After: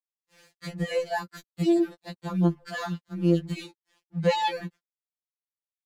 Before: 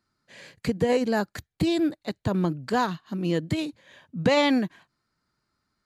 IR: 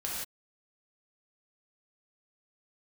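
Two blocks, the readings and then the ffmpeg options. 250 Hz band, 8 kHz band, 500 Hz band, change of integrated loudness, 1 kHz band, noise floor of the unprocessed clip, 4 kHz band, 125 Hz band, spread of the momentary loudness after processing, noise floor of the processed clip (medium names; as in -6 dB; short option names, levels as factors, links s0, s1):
-2.0 dB, -4.0 dB, -3.0 dB, -1.5 dB, -2.0 dB, -80 dBFS, -4.5 dB, +1.0 dB, 16 LU, under -85 dBFS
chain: -af "aeval=exprs='sgn(val(0))*max(abs(val(0))-0.00422,0)':c=same,afftfilt=real='re*2.83*eq(mod(b,8),0)':imag='im*2.83*eq(mod(b,8),0)':win_size=2048:overlap=0.75,volume=0.891"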